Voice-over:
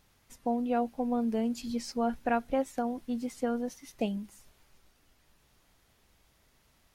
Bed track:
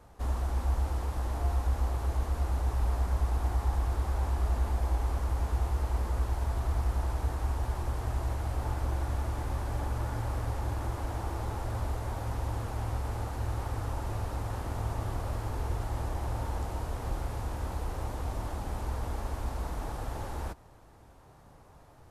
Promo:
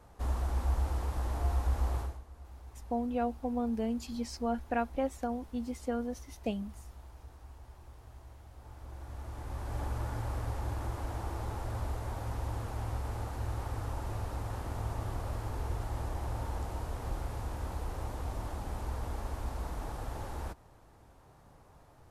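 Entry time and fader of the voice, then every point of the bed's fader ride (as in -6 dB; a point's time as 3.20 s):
2.45 s, -3.0 dB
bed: 2.00 s -1.5 dB
2.23 s -20 dB
8.55 s -20 dB
9.81 s -3 dB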